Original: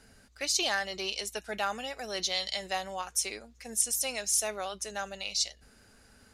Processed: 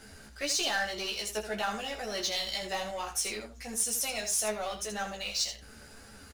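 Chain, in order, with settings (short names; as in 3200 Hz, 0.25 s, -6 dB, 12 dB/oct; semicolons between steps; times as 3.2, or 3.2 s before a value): power-law curve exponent 0.7; flange 1.8 Hz, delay 8.4 ms, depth 5.8 ms, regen +44%; early reflections 14 ms -3 dB, 80 ms -8 dB; gain -3 dB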